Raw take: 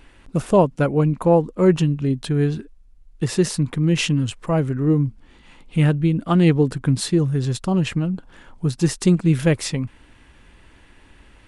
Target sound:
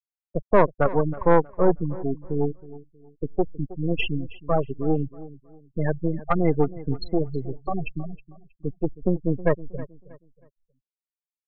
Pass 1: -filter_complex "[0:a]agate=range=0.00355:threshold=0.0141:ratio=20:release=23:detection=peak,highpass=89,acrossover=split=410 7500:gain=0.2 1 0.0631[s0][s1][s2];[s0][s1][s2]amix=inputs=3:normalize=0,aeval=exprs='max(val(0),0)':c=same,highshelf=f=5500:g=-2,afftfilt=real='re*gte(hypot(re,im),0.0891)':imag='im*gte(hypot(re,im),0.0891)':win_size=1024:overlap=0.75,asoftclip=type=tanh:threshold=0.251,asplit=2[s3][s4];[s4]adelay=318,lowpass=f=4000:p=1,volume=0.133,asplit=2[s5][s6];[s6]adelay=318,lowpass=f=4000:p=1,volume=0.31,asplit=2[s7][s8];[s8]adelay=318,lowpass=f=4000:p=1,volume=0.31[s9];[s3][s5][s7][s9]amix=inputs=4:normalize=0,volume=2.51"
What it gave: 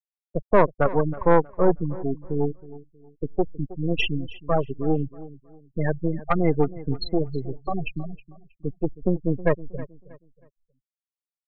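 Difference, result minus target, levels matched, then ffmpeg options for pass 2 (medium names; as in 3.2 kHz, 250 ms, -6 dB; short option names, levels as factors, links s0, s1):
4 kHz band +3.5 dB
-filter_complex "[0:a]agate=range=0.00355:threshold=0.0141:ratio=20:release=23:detection=peak,highpass=89,acrossover=split=410 7500:gain=0.2 1 0.0631[s0][s1][s2];[s0][s1][s2]amix=inputs=3:normalize=0,aeval=exprs='max(val(0),0)':c=same,highshelf=f=5500:g=-9.5,afftfilt=real='re*gte(hypot(re,im),0.0891)':imag='im*gte(hypot(re,im),0.0891)':win_size=1024:overlap=0.75,asoftclip=type=tanh:threshold=0.251,asplit=2[s3][s4];[s4]adelay=318,lowpass=f=4000:p=1,volume=0.133,asplit=2[s5][s6];[s6]adelay=318,lowpass=f=4000:p=1,volume=0.31,asplit=2[s7][s8];[s8]adelay=318,lowpass=f=4000:p=1,volume=0.31[s9];[s3][s5][s7][s9]amix=inputs=4:normalize=0,volume=2.51"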